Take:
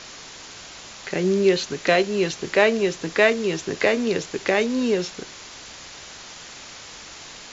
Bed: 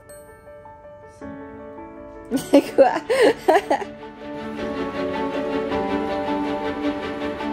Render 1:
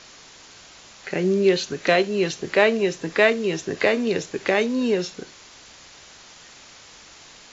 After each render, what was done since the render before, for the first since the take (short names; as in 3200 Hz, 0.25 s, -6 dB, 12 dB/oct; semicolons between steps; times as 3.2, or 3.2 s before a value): noise print and reduce 6 dB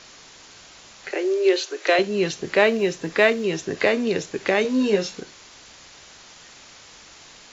1.11–1.99 steep high-pass 310 Hz 72 dB/oct; 2.64–3.44 short-mantissa float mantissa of 6-bit; 4.63–5.2 doubler 15 ms -2.5 dB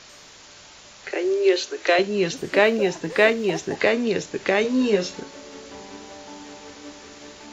add bed -17.5 dB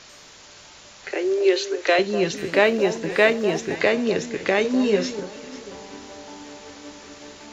echo with dull and thin repeats by turns 0.247 s, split 1300 Hz, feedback 55%, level -11 dB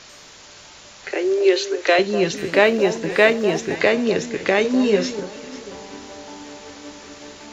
gain +2.5 dB